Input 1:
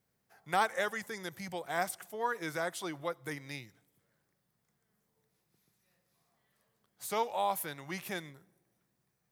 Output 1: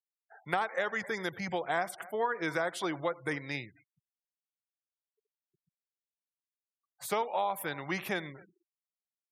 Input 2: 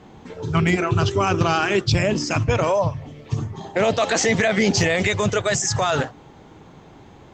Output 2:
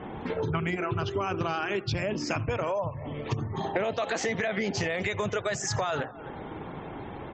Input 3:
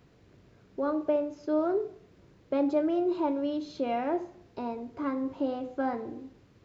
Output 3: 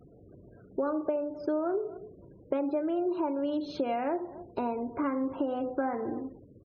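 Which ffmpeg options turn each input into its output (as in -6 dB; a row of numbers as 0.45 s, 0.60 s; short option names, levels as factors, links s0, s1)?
-filter_complex "[0:a]bass=f=250:g=-4,treble=f=4000:g=-8,asplit=2[s0][s1];[s1]adelay=260,highpass=300,lowpass=3400,asoftclip=type=hard:threshold=0.133,volume=0.0501[s2];[s0][s2]amix=inputs=2:normalize=0,acompressor=threshold=0.0178:ratio=8,asplit=2[s3][s4];[s4]aecho=0:1:84:0.0794[s5];[s3][s5]amix=inputs=2:normalize=0,afftfilt=real='re*gte(hypot(re,im),0.00141)':imag='im*gte(hypot(re,im),0.00141)':win_size=1024:overlap=0.75,volume=2.51"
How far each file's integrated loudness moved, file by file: +2.0 LU, -10.0 LU, -1.5 LU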